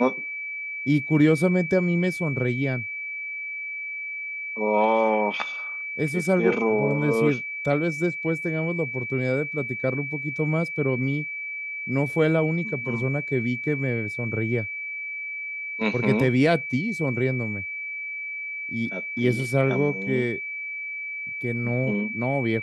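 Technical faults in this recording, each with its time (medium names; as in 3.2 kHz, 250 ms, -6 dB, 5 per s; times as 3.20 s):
whine 2.3 kHz -30 dBFS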